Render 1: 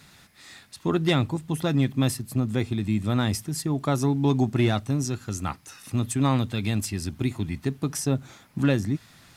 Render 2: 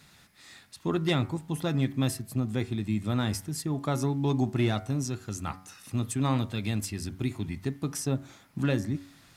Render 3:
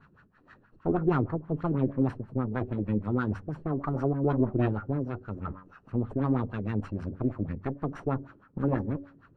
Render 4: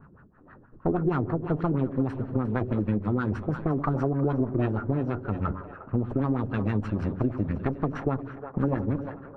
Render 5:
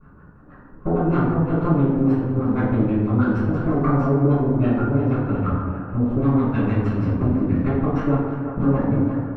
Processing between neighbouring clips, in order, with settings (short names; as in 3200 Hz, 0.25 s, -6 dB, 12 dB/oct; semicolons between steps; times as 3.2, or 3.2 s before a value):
de-hum 93.58 Hz, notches 25; gain -4 dB
minimum comb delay 0.7 ms; LFO low-pass sine 6.3 Hz 350–1600 Hz
split-band echo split 420 Hz, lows 99 ms, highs 0.353 s, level -14.5 dB; compressor, threshold -30 dBFS, peak gain reduction 11 dB; low-pass opened by the level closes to 880 Hz, open at -29.5 dBFS; gain +8 dB
reverb RT60 1.2 s, pre-delay 3 ms, DRR -10.5 dB; gain -9 dB